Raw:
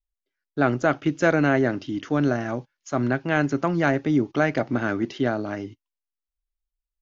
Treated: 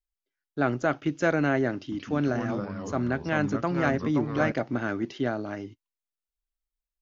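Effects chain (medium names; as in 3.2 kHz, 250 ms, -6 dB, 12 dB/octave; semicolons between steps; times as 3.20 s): 1.75–4.52 s: ever faster or slower copies 168 ms, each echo -3 st, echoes 3, each echo -6 dB; trim -4.5 dB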